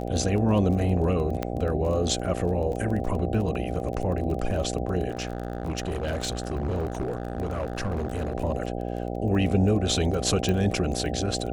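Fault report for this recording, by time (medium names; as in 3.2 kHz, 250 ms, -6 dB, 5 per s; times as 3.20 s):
buzz 60 Hz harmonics 13 -31 dBFS
crackle 20 per s -32 dBFS
1.43 s: pop -14 dBFS
5.10–8.35 s: clipped -24 dBFS
10.49 s: pop -14 dBFS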